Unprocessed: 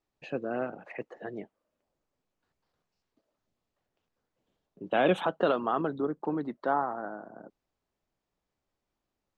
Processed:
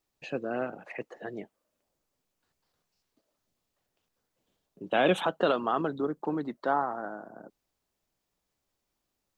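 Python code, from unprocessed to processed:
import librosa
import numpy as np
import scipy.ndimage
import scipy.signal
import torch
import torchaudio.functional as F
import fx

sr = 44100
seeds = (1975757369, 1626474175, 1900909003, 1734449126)

y = fx.high_shelf(x, sr, hz=3700.0, db=10.0)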